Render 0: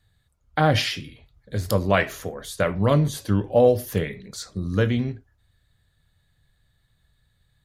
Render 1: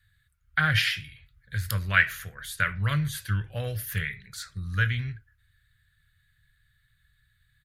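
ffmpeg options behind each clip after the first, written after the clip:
-af "firequalizer=gain_entry='entry(130,0);entry(240,-20);entry(830,-17);entry(1500,9);entry(2700,3);entry(5800,-4);entry(11000,4)':delay=0.05:min_phase=1,volume=-2.5dB"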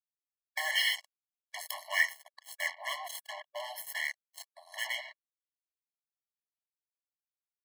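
-af "asoftclip=type=tanh:threshold=-14.5dB,acrusher=bits=4:mix=0:aa=0.5,afftfilt=real='re*eq(mod(floor(b*sr/1024/560),2),1)':imag='im*eq(mod(floor(b*sr/1024/560),2),1)':win_size=1024:overlap=0.75"

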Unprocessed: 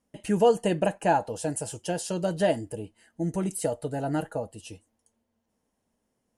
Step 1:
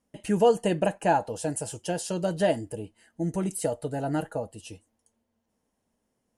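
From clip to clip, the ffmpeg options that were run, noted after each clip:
-af anull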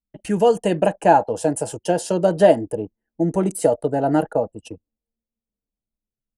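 -filter_complex "[0:a]anlmdn=0.158,acrossover=split=240|1200|4700[a][b][c][d];[b]dynaudnorm=f=260:g=7:m=8.5dB[e];[a][e][c][d]amix=inputs=4:normalize=0,volume=3.5dB"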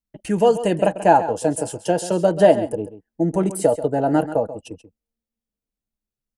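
-af "aecho=1:1:135:0.211"

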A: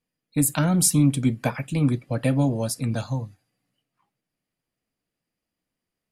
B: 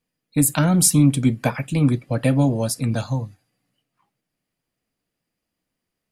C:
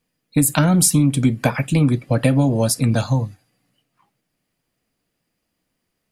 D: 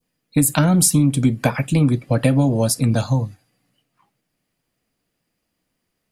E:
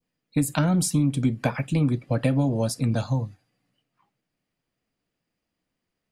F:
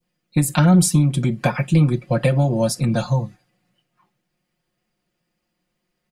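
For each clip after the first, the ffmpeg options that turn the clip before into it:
-af "asoftclip=type=hard:threshold=-7dB,volume=3.5dB"
-af "acompressor=threshold=-18dB:ratio=5,volume=6dB"
-af "adynamicequalizer=threshold=0.0158:dfrequency=2000:dqfactor=0.91:tfrequency=2000:tqfactor=0.91:attack=5:release=100:ratio=0.375:range=2:mode=cutabove:tftype=bell"
-af "equalizer=f=13k:w=0.57:g=-9,volume=-6dB"
-af "aecho=1:1:5.6:0.9,volume=3.5dB"

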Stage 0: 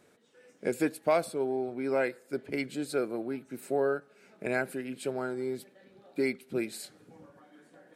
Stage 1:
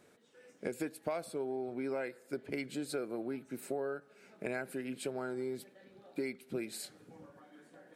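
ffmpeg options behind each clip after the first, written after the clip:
-af "acompressor=threshold=-33dB:ratio=5,volume=-1dB"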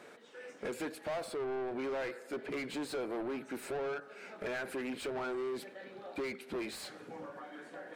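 -filter_complex "[0:a]asplit=2[a][b];[b]highpass=f=720:p=1,volume=29dB,asoftclip=type=tanh:threshold=-21.5dB[c];[a][c]amix=inputs=2:normalize=0,lowpass=f=2.1k:p=1,volume=-6dB,volume=-7.5dB"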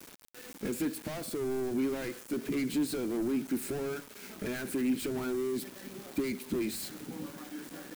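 -af "lowshelf=f=390:t=q:w=1.5:g=11.5,aeval=exprs='val(0)*gte(abs(val(0)),0.00501)':c=same,crystalizer=i=2.5:c=0,volume=-2.5dB"

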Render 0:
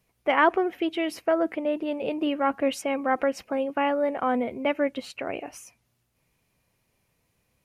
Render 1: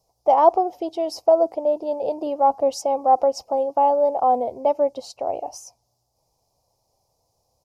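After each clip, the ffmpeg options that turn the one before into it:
-af "firequalizer=gain_entry='entry(110,0);entry(190,-9);entry(540,6);entry(800,12);entry(1600,-24);entry(2600,-17);entry(5000,10);entry(9100,-1)':delay=0.05:min_phase=1"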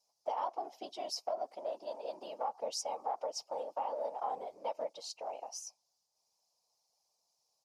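-af "afftfilt=real='hypot(re,im)*cos(2*PI*random(0))':imag='hypot(re,im)*sin(2*PI*random(1))':win_size=512:overlap=0.75,bandpass=f=4.3k:t=q:w=0.62:csg=0,acompressor=threshold=-35dB:ratio=6,volume=2.5dB"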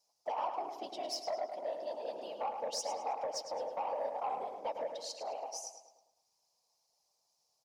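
-filter_complex "[0:a]asoftclip=type=tanh:threshold=-29.5dB,asplit=2[a][b];[b]adelay=106,lowpass=f=4.5k:p=1,volume=-6.5dB,asplit=2[c][d];[d]adelay=106,lowpass=f=4.5k:p=1,volume=0.54,asplit=2[e][f];[f]adelay=106,lowpass=f=4.5k:p=1,volume=0.54,asplit=2[g][h];[h]adelay=106,lowpass=f=4.5k:p=1,volume=0.54,asplit=2[i][j];[j]adelay=106,lowpass=f=4.5k:p=1,volume=0.54,asplit=2[k][l];[l]adelay=106,lowpass=f=4.5k:p=1,volume=0.54,asplit=2[m][n];[n]adelay=106,lowpass=f=4.5k:p=1,volume=0.54[o];[a][c][e][g][i][k][m][o]amix=inputs=8:normalize=0,volume=1dB"

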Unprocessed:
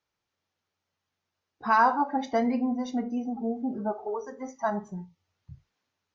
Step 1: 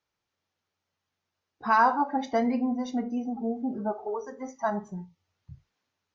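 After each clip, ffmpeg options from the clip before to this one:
-af anull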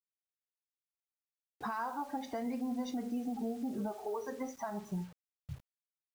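-af "acompressor=threshold=-34dB:ratio=4,alimiter=level_in=7.5dB:limit=-24dB:level=0:latency=1:release=298,volume=-7.5dB,acrusher=bits=9:mix=0:aa=0.000001,volume=2.5dB"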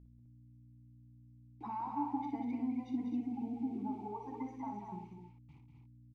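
-filter_complex "[0:a]asplit=3[a][b][c];[a]bandpass=f=300:t=q:w=8,volume=0dB[d];[b]bandpass=f=870:t=q:w=8,volume=-6dB[e];[c]bandpass=f=2.24k:t=q:w=8,volume=-9dB[f];[d][e][f]amix=inputs=3:normalize=0,aeval=exprs='val(0)+0.000631*(sin(2*PI*60*n/s)+sin(2*PI*2*60*n/s)/2+sin(2*PI*3*60*n/s)/3+sin(2*PI*4*60*n/s)/4+sin(2*PI*5*60*n/s)/5)':c=same,aecho=1:1:58.31|192.4|256.6:0.447|0.447|0.501,volume=7dB"

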